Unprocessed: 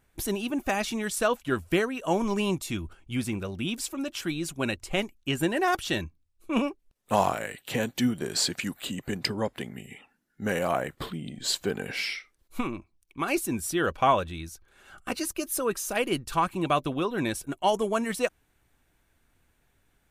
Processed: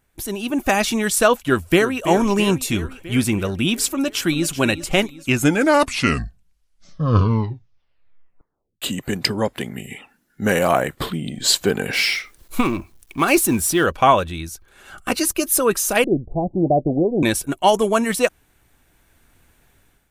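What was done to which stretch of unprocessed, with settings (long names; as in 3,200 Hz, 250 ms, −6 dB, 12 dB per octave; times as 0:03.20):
0:01.41–0:02.02: delay throw 330 ms, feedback 65%, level −11 dB
0:03.94–0:04.55: delay throw 380 ms, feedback 45%, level −12.5 dB
0:05.05: tape stop 3.77 s
0:11.93–0:13.84: mu-law and A-law mismatch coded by mu
0:16.04–0:17.23: Butterworth low-pass 750 Hz 72 dB per octave
whole clip: high-shelf EQ 8,000 Hz +4 dB; automatic gain control gain up to 11 dB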